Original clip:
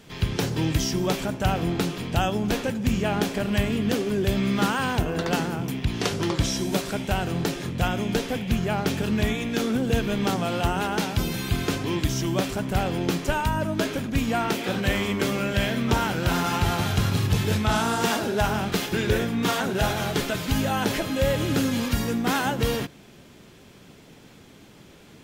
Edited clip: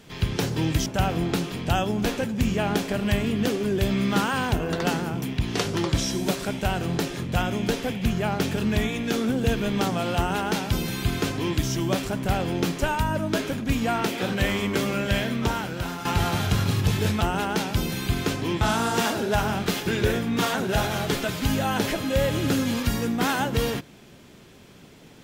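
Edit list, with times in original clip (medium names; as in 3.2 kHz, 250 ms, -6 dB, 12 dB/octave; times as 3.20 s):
0.86–1.32 s: delete
10.63–12.03 s: copy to 17.67 s
15.60–16.51 s: fade out, to -10.5 dB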